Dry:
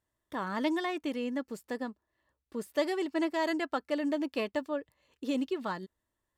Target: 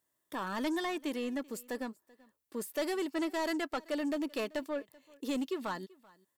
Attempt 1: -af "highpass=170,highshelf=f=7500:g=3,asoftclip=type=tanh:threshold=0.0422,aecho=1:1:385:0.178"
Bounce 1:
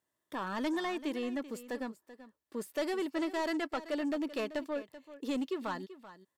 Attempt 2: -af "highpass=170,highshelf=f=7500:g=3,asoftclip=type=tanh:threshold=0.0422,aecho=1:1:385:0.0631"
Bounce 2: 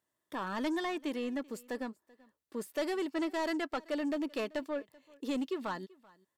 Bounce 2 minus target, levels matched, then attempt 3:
8 kHz band -4.5 dB
-af "highpass=170,highshelf=f=7500:g=13,asoftclip=type=tanh:threshold=0.0422,aecho=1:1:385:0.0631"

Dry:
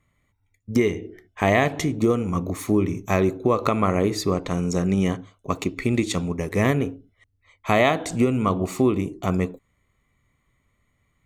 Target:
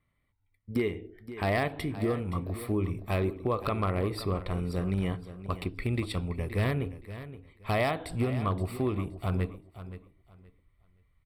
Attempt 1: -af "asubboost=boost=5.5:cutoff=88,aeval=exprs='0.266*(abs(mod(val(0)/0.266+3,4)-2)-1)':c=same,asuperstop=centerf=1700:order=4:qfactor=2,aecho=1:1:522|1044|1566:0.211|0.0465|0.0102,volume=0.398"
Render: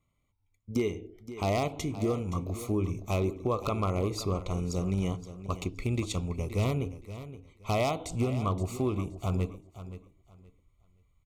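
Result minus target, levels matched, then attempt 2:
8 kHz band +8.0 dB
-af "asubboost=boost=5.5:cutoff=88,aeval=exprs='0.266*(abs(mod(val(0)/0.266+3,4)-2)-1)':c=same,asuperstop=centerf=6500:order=4:qfactor=2,aecho=1:1:522|1044|1566:0.211|0.0465|0.0102,volume=0.398"

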